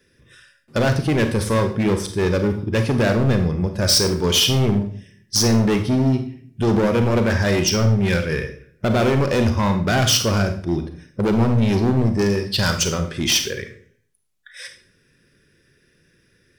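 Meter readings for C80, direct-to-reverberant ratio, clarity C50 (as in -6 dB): 13.5 dB, 6.5 dB, 9.0 dB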